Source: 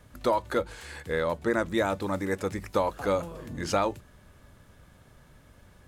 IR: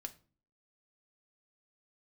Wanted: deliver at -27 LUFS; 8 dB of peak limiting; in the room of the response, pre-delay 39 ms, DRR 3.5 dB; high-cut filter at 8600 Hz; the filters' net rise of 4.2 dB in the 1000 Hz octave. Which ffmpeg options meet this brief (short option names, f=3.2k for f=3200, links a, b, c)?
-filter_complex "[0:a]lowpass=8.6k,equalizer=f=1k:t=o:g=5,alimiter=limit=-17.5dB:level=0:latency=1,asplit=2[a][b];[1:a]atrim=start_sample=2205,adelay=39[c];[b][c]afir=irnorm=-1:irlink=0,volume=0.5dB[d];[a][d]amix=inputs=2:normalize=0,volume=2dB"